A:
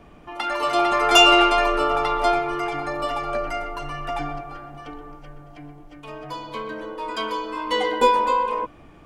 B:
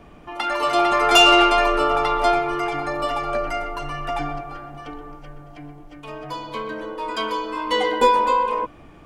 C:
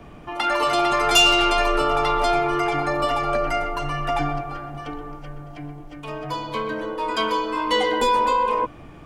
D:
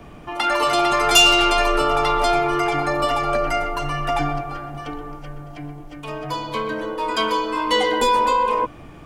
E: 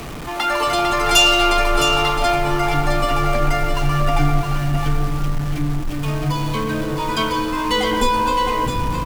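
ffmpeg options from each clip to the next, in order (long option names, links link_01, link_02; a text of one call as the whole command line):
ffmpeg -i in.wav -af "asoftclip=type=tanh:threshold=-6dB,volume=2dB" out.wav
ffmpeg -i in.wav -filter_complex "[0:a]equalizer=frequency=120:width=1.4:gain=4,acrossover=split=180|3000[link_01][link_02][link_03];[link_02]alimiter=limit=-15.5dB:level=0:latency=1[link_04];[link_01][link_04][link_03]amix=inputs=3:normalize=0,volume=2.5dB" out.wav
ffmpeg -i in.wav -af "highshelf=frequency=5500:gain=4.5,volume=1.5dB" out.wav
ffmpeg -i in.wav -af "aeval=exprs='val(0)+0.5*0.0473*sgn(val(0))':channel_layout=same,aecho=1:1:663:0.447,asubboost=boost=4:cutoff=240,volume=-1dB" out.wav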